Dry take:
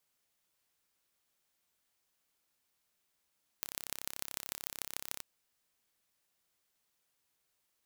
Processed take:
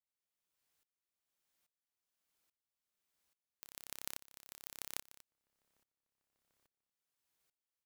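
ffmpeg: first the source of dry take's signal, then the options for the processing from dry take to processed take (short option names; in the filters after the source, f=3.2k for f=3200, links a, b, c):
-f lavfi -i "aevalsrc='0.376*eq(mod(n,1309),0)*(0.5+0.5*eq(mod(n,6545),0))':d=1.58:s=44100"
-filter_complex "[0:a]asplit=2[a][b];[b]adelay=1691,volume=-28dB,highshelf=f=4k:g=-38[c];[a][c]amix=inputs=2:normalize=0,aeval=exprs='val(0)*pow(10,-22*if(lt(mod(-1.2*n/s,1),2*abs(-1.2)/1000),1-mod(-1.2*n/s,1)/(2*abs(-1.2)/1000),(mod(-1.2*n/s,1)-2*abs(-1.2)/1000)/(1-2*abs(-1.2)/1000))/20)':c=same"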